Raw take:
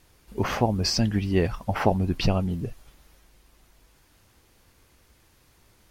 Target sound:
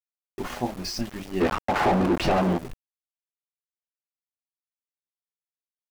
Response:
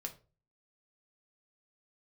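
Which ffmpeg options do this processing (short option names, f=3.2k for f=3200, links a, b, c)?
-filter_complex "[1:a]atrim=start_sample=2205,atrim=end_sample=3087,asetrate=70560,aresample=44100[a];[0:a][a]afir=irnorm=-1:irlink=0,aeval=exprs='val(0)*gte(abs(val(0)),0.0158)':c=same,asplit=3[b][c][d];[b]afade=t=out:st=1.4:d=0.02[e];[c]asplit=2[f][g];[g]highpass=f=720:p=1,volume=33dB,asoftclip=type=tanh:threshold=-11.5dB[h];[f][h]amix=inputs=2:normalize=0,lowpass=f=1.1k:p=1,volume=-6dB,afade=t=in:st=1.4:d=0.02,afade=t=out:st=2.57:d=0.02[i];[d]afade=t=in:st=2.57:d=0.02[j];[e][i][j]amix=inputs=3:normalize=0"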